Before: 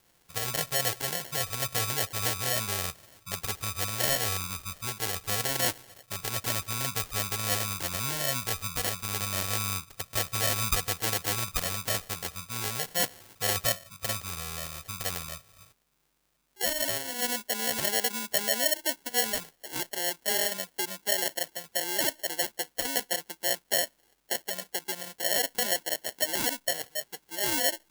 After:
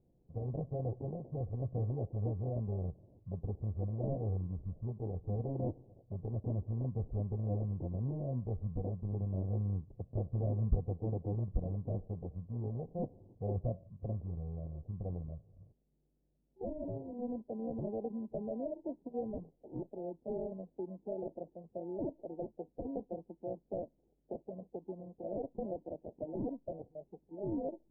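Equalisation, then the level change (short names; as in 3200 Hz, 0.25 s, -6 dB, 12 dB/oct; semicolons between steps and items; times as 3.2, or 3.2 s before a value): Gaussian blur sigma 18 samples; +3.5 dB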